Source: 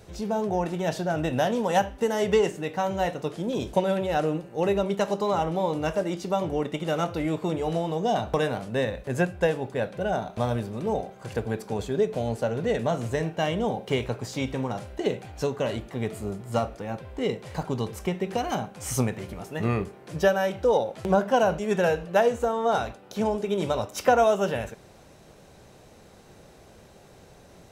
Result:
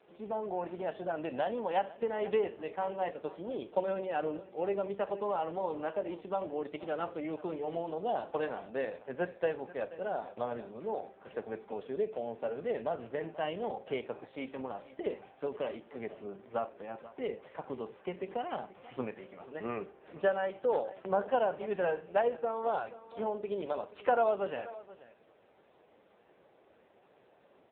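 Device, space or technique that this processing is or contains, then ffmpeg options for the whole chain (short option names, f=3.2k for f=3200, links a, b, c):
satellite phone: -af "highpass=310,lowpass=3.4k,aecho=1:1:481:0.133,volume=-6.5dB" -ar 8000 -c:a libopencore_amrnb -b:a 5900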